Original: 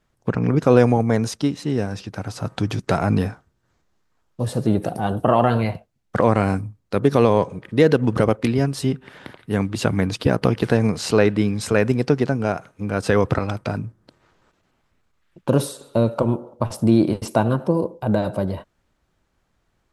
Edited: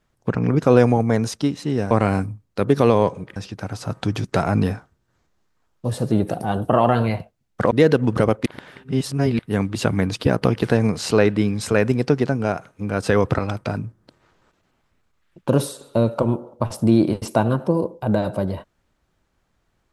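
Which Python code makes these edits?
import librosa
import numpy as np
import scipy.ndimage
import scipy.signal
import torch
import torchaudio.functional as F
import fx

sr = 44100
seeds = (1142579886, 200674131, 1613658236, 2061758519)

y = fx.edit(x, sr, fx.move(start_s=6.26, length_s=1.45, to_s=1.91),
    fx.reverse_span(start_s=8.46, length_s=0.93), tone=tone)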